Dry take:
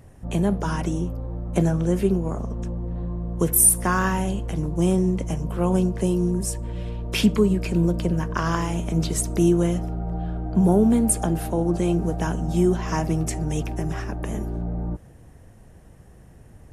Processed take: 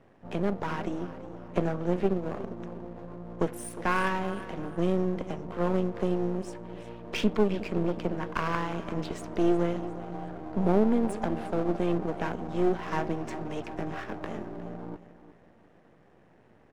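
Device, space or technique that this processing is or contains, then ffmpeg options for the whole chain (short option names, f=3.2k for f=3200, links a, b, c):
crystal radio: -filter_complex "[0:a]asettb=1/sr,asplit=3[a][b][c];[a]atrim=end=13.694[d];[b]atrim=start=13.69:end=14.35,asetpts=PTS-STARTPTS,afade=t=in:d=0.004:c=qsin,afade=t=out:st=0.656:d=0.004:c=qsin,asplit=2[e][f];[f]adelay=19,volume=-5.5dB[g];[e][g]amix=inputs=2:normalize=0,atrim=end_sample=29106[h];[c]atrim=start=14.346[i];[d][h]acrossfade=d=0.004:c1=hsin:c2=qsin[j];[j][i]acrossfade=d=0.004:c1=qsin:c2=hsin,highpass=250,lowpass=2.7k,aecho=1:1:358|716|1074:0.178|0.0676|0.0257,aeval=exprs='if(lt(val(0),0),0.251*val(0),val(0))':c=same"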